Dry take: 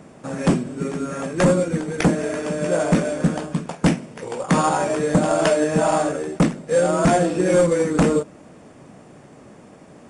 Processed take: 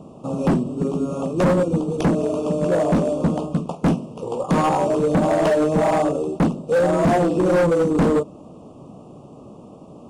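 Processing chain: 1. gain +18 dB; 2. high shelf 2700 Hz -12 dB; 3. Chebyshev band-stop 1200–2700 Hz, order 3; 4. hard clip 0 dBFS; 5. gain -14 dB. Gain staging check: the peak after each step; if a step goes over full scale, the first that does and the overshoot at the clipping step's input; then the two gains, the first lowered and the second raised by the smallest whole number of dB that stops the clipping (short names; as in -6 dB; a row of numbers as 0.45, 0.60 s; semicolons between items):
+8.0, +8.0, +9.5, 0.0, -14.0 dBFS; step 1, 9.5 dB; step 1 +8 dB, step 5 -4 dB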